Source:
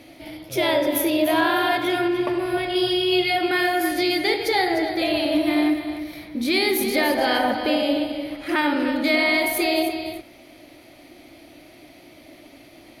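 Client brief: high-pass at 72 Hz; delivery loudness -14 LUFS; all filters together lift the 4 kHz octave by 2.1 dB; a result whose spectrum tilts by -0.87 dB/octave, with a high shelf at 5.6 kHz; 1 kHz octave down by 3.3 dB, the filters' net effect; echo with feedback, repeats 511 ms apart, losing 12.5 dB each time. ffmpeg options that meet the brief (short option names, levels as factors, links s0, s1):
-af "highpass=72,equalizer=f=1000:t=o:g=-5,equalizer=f=4000:t=o:g=5,highshelf=f=5600:g=-6,aecho=1:1:511|1022|1533:0.237|0.0569|0.0137,volume=2.37"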